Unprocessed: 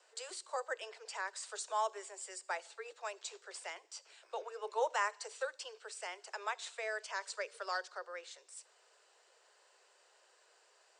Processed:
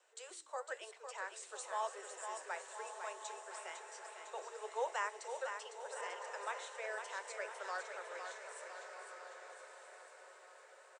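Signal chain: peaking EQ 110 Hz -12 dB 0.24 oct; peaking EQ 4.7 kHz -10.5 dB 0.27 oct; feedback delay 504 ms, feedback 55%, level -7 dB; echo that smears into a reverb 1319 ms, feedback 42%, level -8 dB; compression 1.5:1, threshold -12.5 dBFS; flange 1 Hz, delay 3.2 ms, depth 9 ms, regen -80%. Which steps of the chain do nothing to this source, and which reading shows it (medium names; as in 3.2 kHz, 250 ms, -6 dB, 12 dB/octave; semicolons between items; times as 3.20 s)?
peaking EQ 110 Hz: input has nothing below 340 Hz; compression, threshold -12.5 dBFS: peak at its input -22.5 dBFS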